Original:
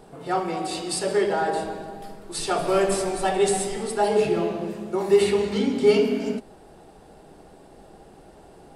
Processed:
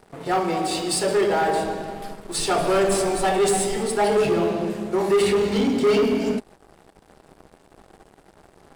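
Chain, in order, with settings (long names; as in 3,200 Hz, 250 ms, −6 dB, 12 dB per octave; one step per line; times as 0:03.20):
leveller curve on the samples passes 3
level −6.5 dB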